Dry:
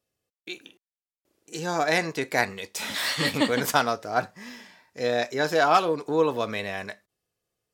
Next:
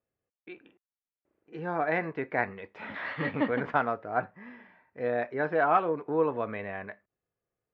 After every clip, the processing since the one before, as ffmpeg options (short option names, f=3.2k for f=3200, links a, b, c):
-af "lowpass=f=2.1k:w=0.5412,lowpass=f=2.1k:w=1.3066,volume=-4dB"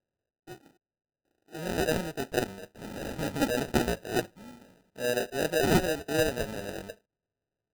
-af "acrusher=samples=40:mix=1:aa=0.000001"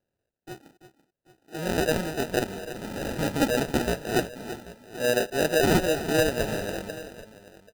-af "alimiter=limit=-18.5dB:level=0:latency=1:release=226,aecho=1:1:335|786:0.237|0.133,volume=5dB"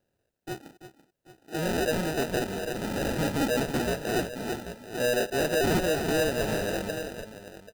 -filter_complex "[0:a]asplit=2[a][b];[b]acompressor=threshold=-30dB:ratio=6,volume=-2dB[c];[a][c]amix=inputs=2:normalize=0,asoftclip=type=tanh:threshold=-21dB"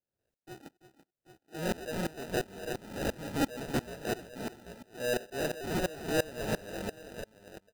-af "aeval=exprs='val(0)*pow(10,-23*if(lt(mod(-2.9*n/s,1),2*abs(-2.9)/1000),1-mod(-2.9*n/s,1)/(2*abs(-2.9)/1000),(mod(-2.9*n/s,1)-2*abs(-2.9)/1000)/(1-2*abs(-2.9)/1000))/20)':c=same"